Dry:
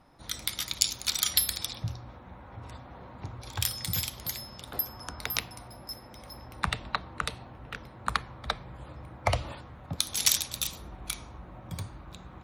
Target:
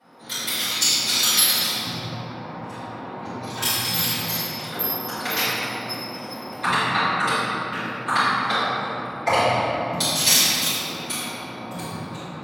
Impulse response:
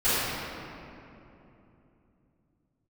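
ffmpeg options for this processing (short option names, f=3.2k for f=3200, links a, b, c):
-filter_complex "[0:a]highpass=f=170:w=0.5412,highpass=f=170:w=1.3066[a];[1:a]atrim=start_sample=2205[b];[a][b]afir=irnorm=-1:irlink=0,volume=-3dB"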